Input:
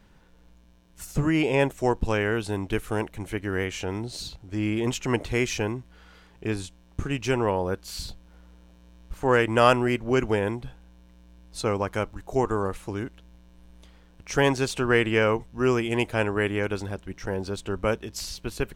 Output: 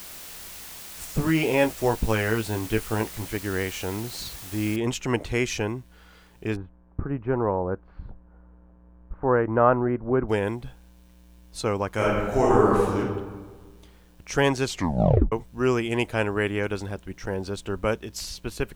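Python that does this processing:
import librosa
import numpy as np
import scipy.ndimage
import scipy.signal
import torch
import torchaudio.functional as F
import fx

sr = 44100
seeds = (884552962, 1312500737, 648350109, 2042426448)

y = fx.doubler(x, sr, ms=18.0, db=-6, at=(1.18, 3.26))
y = fx.noise_floor_step(y, sr, seeds[0], at_s=4.76, before_db=-41, after_db=-68, tilt_db=0.0)
y = fx.lowpass(y, sr, hz=1400.0, slope=24, at=(6.55, 10.28), fade=0.02)
y = fx.reverb_throw(y, sr, start_s=11.94, length_s=1.03, rt60_s=1.4, drr_db=-6.5)
y = fx.edit(y, sr, fx.tape_stop(start_s=14.64, length_s=0.68), tone=tone)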